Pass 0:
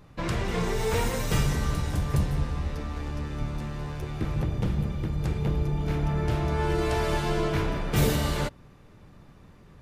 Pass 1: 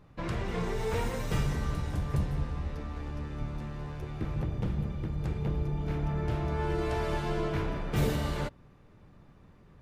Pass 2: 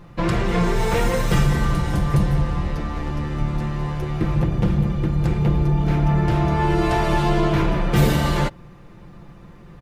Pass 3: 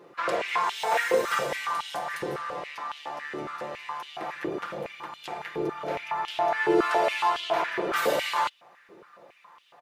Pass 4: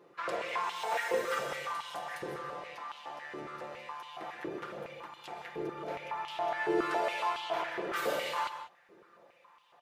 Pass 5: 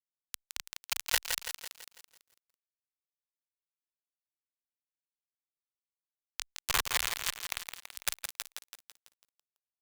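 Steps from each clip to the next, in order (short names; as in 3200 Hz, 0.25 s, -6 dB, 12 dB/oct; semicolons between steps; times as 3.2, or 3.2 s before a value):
high shelf 3800 Hz -7.5 dB; gain -4.5 dB
comb 5.8 ms, depth 52%; in parallel at -2 dB: limiter -23.5 dBFS, peak gain reduction 7.5 dB; on the sum: gain +7 dB
stepped high-pass 7.2 Hz 410–3100 Hz; gain -5.5 dB
reverb, pre-delay 0.117 s, DRR 9 dB; gain -8 dB
bit-crush 4-bit; passive tone stack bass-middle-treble 10-0-10; lo-fi delay 0.166 s, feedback 55%, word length 10-bit, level -6.5 dB; gain +7.5 dB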